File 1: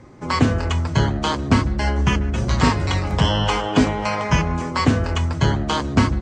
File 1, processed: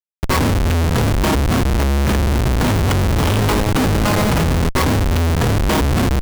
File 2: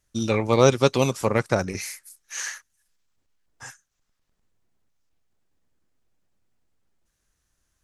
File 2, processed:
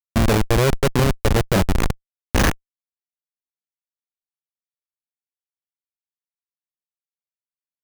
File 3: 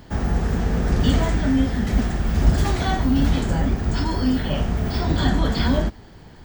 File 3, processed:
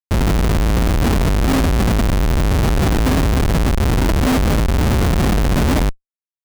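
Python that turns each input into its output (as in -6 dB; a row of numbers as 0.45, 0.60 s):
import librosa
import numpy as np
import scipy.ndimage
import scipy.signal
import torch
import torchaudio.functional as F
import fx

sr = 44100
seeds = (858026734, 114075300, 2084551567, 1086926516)

y = fx.dynamic_eq(x, sr, hz=990.0, q=0.8, threshold_db=-32.0, ratio=4.0, max_db=-3)
y = fx.rider(y, sr, range_db=3, speed_s=0.5)
y = fx.schmitt(y, sr, flips_db=-22.0)
y = y * 10.0 ** (-9 / 20.0) / np.max(np.abs(y))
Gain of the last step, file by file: +4.5, +14.5, +6.0 dB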